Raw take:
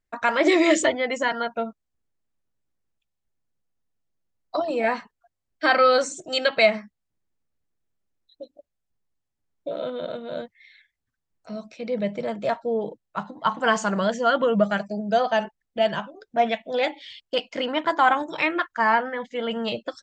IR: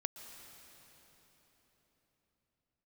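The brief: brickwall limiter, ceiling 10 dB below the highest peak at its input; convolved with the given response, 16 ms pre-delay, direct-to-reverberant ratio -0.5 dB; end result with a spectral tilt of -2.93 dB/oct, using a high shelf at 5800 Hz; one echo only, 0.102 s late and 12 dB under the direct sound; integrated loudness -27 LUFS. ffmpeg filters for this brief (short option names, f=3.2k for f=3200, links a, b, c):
-filter_complex "[0:a]highshelf=f=5.8k:g=-8.5,alimiter=limit=-16.5dB:level=0:latency=1,aecho=1:1:102:0.251,asplit=2[a][b];[1:a]atrim=start_sample=2205,adelay=16[c];[b][c]afir=irnorm=-1:irlink=0,volume=1.5dB[d];[a][d]amix=inputs=2:normalize=0,volume=-2.5dB"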